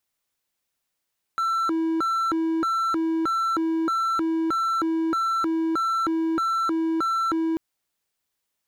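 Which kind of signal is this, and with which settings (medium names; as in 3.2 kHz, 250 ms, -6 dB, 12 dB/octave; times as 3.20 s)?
siren hi-lo 325–1340 Hz 1.6 per s triangle -19 dBFS 6.19 s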